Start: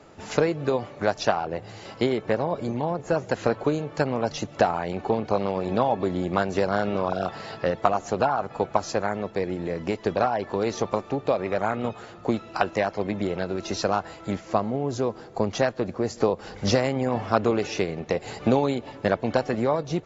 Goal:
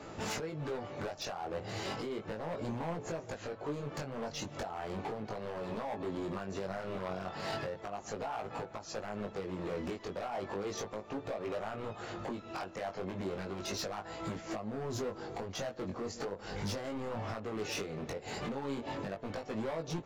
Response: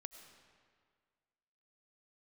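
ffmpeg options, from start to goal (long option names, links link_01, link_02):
-filter_complex "[0:a]acompressor=threshold=-32dB:ratio=4,alimiter=level_in=2dB:limit=-24dB:level=0:latency=1:release=448,volume=-2dB,asoftclip=type=hard:threshold=-37dB,flanger=delay=18:depth=3.8:speed=0.35,asplit=2[link_01][link_02];[link_02]asuperpass=centerf=870:order=4:qfactor=1[link_03];[1:a]atrim=start_sample=2205,adelay=38[link_04];[link_03][link_04]afir=irnorm=-1:irlink=0,volume=-9.5dB[link_05];[link_01][link_05]amix=inputs=2:normalize=0,volume=6.5dB"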